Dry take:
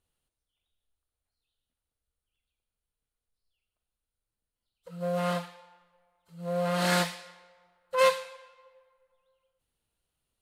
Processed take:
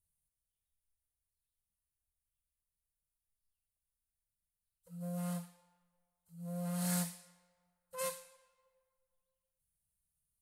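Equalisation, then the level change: EQ curve 190 Hz 0 dB, 290 Hz -19 dB, 630 Hz -11 dB, 1200 Hz -14 dB, 3500 Hz -14 dB, 9800 Hz +7 dB; -5.0 dB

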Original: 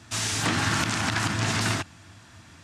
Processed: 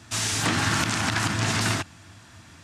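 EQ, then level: high shelf 11000 Hz +4 dB; +1.0 dB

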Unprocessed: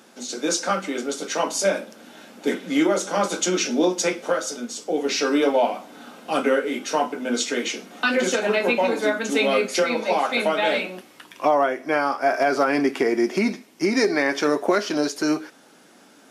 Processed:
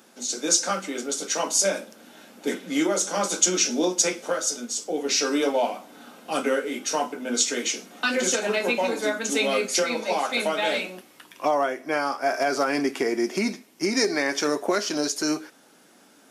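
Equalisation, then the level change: dynamic EQ 6800 Hz, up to +8 dB, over -43 dBFS, Q 0.9; high shelf 9900 Hz +8 dB; -4.0 dB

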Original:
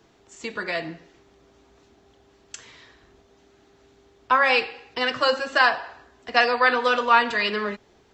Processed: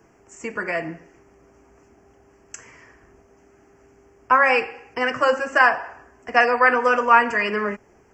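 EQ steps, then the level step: Butterworth band-stop 3800 Hz, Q 1.2; +3.0 dB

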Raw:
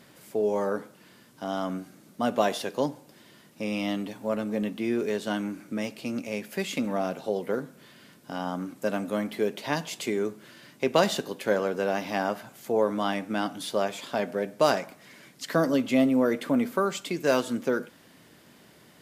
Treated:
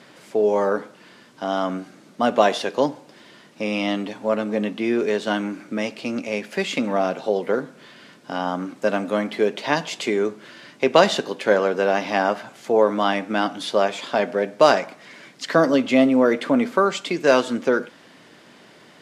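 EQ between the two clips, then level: HPF 310 Hz 6 dB/oct; air absorption 74 m; +9.0 dB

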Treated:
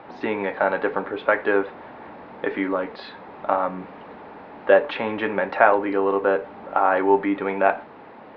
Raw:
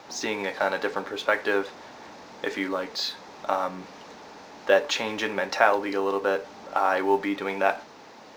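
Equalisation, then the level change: LPF 3100 Hz 12 dB/oct; air absorption 410 m; +6.0 dB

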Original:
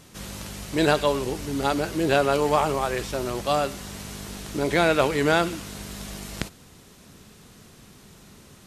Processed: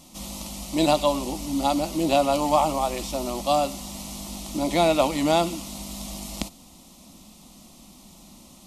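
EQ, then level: fixed phaser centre 430 Hz, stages 6; +3.5 dB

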